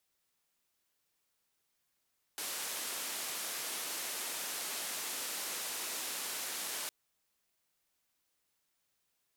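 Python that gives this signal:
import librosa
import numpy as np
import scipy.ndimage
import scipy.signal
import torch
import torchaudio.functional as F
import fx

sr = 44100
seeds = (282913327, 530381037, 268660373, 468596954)

y = fx.band_noise(sr, seeds[0], length_s=4.51, low_hz=290.0, high_hz=13000.0, level_db=-39.5)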